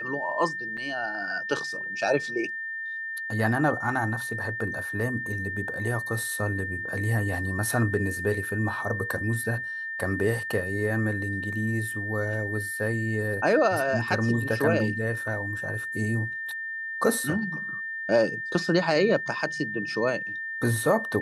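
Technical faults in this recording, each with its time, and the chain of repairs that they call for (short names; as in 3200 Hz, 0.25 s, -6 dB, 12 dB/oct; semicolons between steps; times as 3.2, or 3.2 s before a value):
tone 1800 Hz -31 dBFS
0.77–0.78 gap 5.3 ms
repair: notch 1800 Hz, Q 30; interpolate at 0.77, 5.3 ms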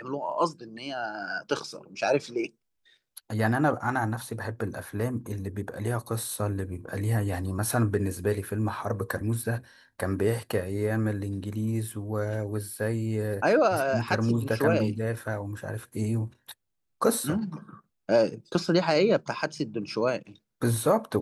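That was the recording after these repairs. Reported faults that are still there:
none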